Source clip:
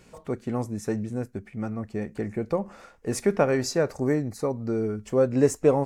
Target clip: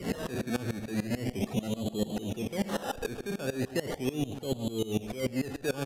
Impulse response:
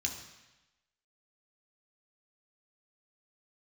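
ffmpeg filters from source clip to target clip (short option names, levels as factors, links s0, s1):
-filter_complex "[0:a]aeval=exprs='val(0)+0.5*0.075*sgn(val(0))':c=same,equalizer=f=420:w=0.41:g=11.5,asplit=2[s0][s1];[s1]aeval=exprs='0.398*(abs(mod(val(0)/0.398+3,4)-2)-1)':c=same,volume=0.335[s2];[s0][s2]amix=inputs=2:normalize=0,afftdn=nr=21:nf=-20,acrusher=samples=17:mix=1:aa=0.000001:lfo=1:lforange=10.2:lforate=0.38,aeval=exprs='1.68*(cos(1*acos(clip(val(0)/1.68,-1,1)))-cos(1*PI/2))+0.0335*(cos(2*acos(clip(val(0)/1.68,-1,1)))-cos(2*PI/2))+0.133*(cos(3*acos(clip(val(0)/1.68,-1,1)))-cos(3*PI/2))':c=same,areverse,acompressor=threshold=0.126:ratio=6,areverse,aresample=32000,aresample=44100,adynamicequalizer=threshold=0.0126:dfrequency=720:dqfactor=3.6:tfrequency=720:tqfactor=3.6:attack=5:release=100:ratio=0.375:range=2:mode=boostabove:tftype=bell,acrossover=split=250|1500[s3][s4][s5];[s3]acompressor=threshold=0.0501:ratio=4[s6];[s4]acompressor=threshold=0.0355:ratio=4[s7];[s5]acompressor=threshold=0.02:ratio=4[s8];[s6][s7][s8]amix=inputs=3:normalize=0,asplit=2[s9][s10];[s10]adelay=131,lowpass=f=4800:p=1,volume=0.266,asplit=2[s11][s12];[s12]adelay=131,lowpass=f=4800:p=1,volume=0.22,asplit=2[s13][s14];[s14]adelay=131,lowpass=f=4800:p=1,volume=0.22[s15];[s9][s11][s13][s15]amix=inputs=4:normalize=0,aeval=exprs='val(0)*pow(10,-21*if(lt(mod(-6.8*n/s,1),2*abs(-6.8)/1000),1-mod(-6.8*n/s,1)/(2*abs(-6.8)/1000),(mod(-6.8*n/s,1)-2*abs(-6.8)/1000)/(1-2*abs(-6.8)/1000))/20)':c=same"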